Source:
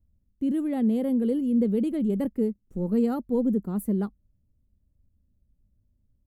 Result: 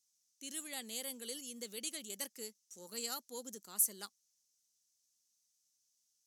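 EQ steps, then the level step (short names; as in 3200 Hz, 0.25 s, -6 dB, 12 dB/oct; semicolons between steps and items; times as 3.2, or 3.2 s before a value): band-pass 6000 Hz, Q 3.9; tilt +3.5 dB/oct; +17.5 dB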